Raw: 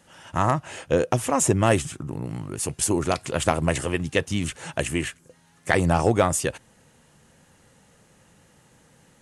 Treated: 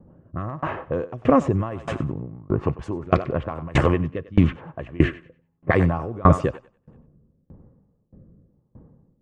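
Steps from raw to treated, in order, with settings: low shelf 60 Hz +7 dB; rotary speaker horn 1 Hz; bell 1100 Hz +10.5 dB 0.21 oct; low-pass opened by the level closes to 360 Hz, open at -19.5 dBFS; Bessel low-pass 1400 Hz, order 2; thinning echo 95 ms, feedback 38%, high-pass 350 Hz, level -13 dB; maximiser +15.5 dB; dB-ramp tremolo decaying 1.6 Hz, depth 27 dB

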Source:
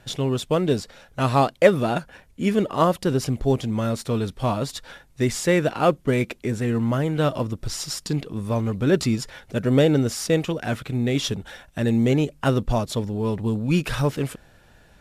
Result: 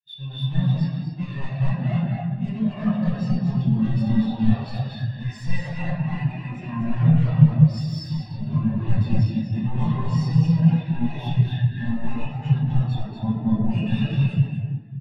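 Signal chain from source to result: minimum comb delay 1.1 ms; recorder AGC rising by 6.3 dB/s; weighting filter D; limiter -10 dBFS, peak gain reduction 10.5 dB; sine folder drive 10 dB, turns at -10 dBFS; echo 0.239 s -3.5 dB; shoebox room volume 210 m³, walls hard, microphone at 0.93 m; spectral expander 2.5:1; gain -9.5 dB

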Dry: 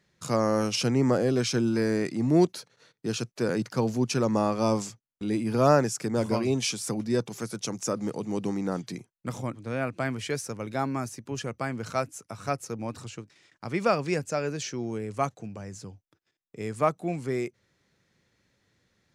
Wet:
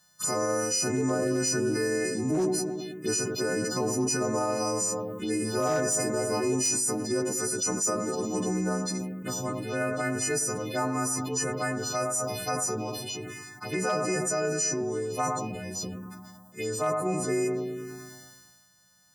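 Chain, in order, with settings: frequency quantiser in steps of 3 st; high shelf 7800 Hz +3.5 dB; in parallel at -0.5 dB: compressor 8:1, threshold -35 dBFS, peak gain reduction 20 dB; on the sum: analogue delay 0.107 s, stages 1024, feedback 66%, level -10.5 dB; on a send at -10 dB: reverb RT60 0.45 s, pre-delay 3 ms; on the sum: envelope phaser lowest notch 380 Hz, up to 3400 Hz, full sweep at -23 dBFS; overloaded stage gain 12 dB; low shelf 120 Hz -11 dB; limiter -18 dBFS, peak gain reduction 8 dB; sustainer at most 30 dB/s; gain -1 dB

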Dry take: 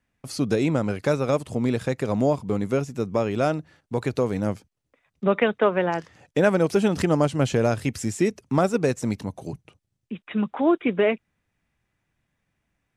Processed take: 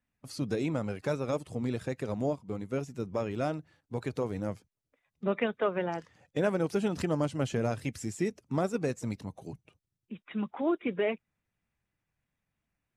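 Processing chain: bin magnitudes rounded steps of 15 dB; 2.14–2.76 upward expander 1.5:1, over -34 dBFS; gain -8.5 dB

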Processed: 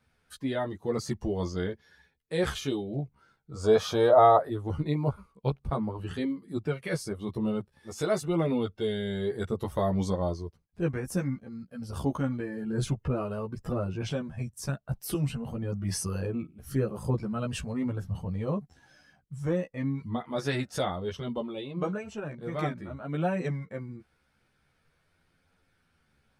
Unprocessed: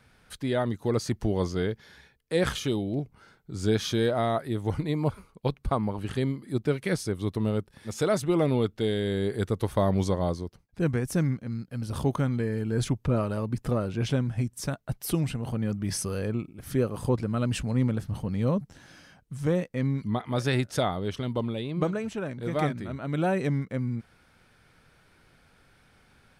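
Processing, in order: chorus voices 2, 0.47 Hz, delay 13 ms, depth 2 ms; spectral noise reduction 8 dB; 3.51–4.5 band shelf 770 Hz +13.5 dB

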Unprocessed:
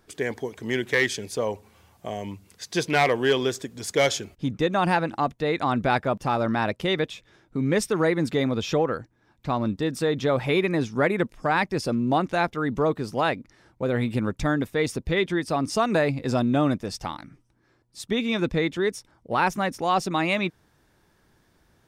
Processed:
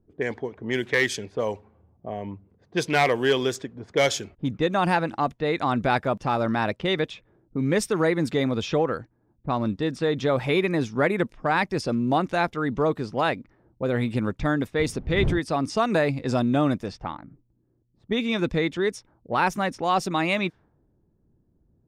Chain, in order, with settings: 14.79–15.38 wind noise 160 Hz -27 dBFS; low-pass opened by the level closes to 300 Hz, open at -21 dBFS

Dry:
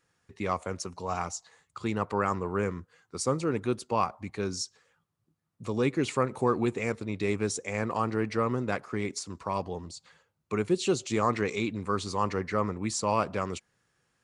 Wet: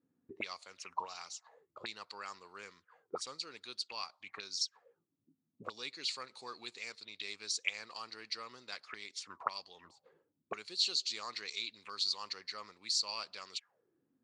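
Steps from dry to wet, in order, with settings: auto-wah 250–4400 Hz, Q 7.2, up, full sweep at -29.5 dBFS; gain +12 dB

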